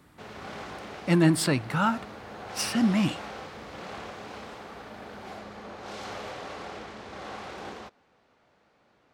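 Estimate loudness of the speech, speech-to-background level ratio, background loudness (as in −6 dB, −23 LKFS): −26.0 LKFS, 14.5 dB, −40.5 LKFS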